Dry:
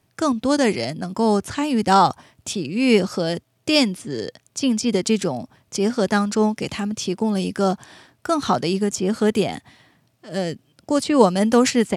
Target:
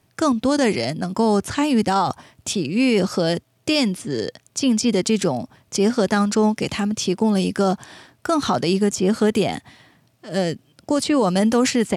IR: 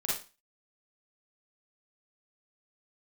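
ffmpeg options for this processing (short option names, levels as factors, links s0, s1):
-af "alimiter=limit=0.224:level=0:latency=1:release=36,volume=1.41"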